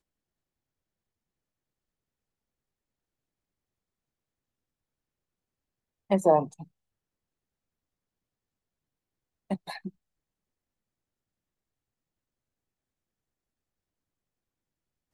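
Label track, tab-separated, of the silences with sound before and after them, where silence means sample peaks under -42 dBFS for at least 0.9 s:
6.640000	9.500000	silence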